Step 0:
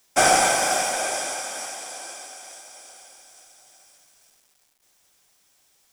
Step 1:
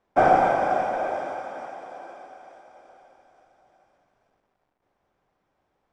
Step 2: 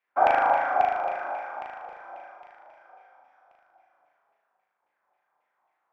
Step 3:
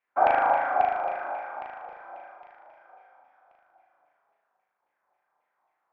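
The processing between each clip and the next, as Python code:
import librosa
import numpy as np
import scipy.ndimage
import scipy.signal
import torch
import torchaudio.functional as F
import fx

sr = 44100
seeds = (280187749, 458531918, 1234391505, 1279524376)

y1 = scipy.signal.sosfilt(scipy.signal.butter(2, 1000.0, 'lowpass', fs=sr, output='sos'), x)
y1 = y1 * librosa.db_to_amplitude(3.0)
y2 = fx.filter_lfo_bandpass(y1, sr, shape='saw_down', hz=3.7, low_hz=720.0, high_hz=2500.0, q=3.7)
y2 = fx.room_flutter(y2, sr, wall_m=6.5, rt60_s=0.9)
y2 = y2 * librosa.db_to_amplitude(3.5)
y3 = fx.air_absorb(y2, sr, metres=170.0)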